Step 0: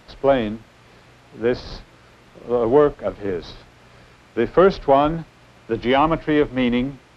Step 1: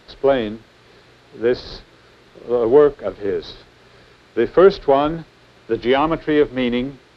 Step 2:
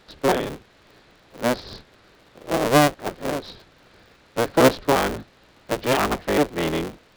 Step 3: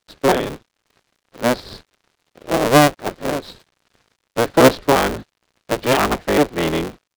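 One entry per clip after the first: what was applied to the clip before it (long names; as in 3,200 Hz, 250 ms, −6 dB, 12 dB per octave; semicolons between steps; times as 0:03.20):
graphic EQ with 15 bands 400 Hz +8 dB, 1,600 Hz +4 dB, 4,000 Hz +8 dB; level −3 dB
sub-harmonics by changed cycles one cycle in 3, inverted; level −4.5 dB
dead-zone distortion −48.5 dBFS; level +4.5 dB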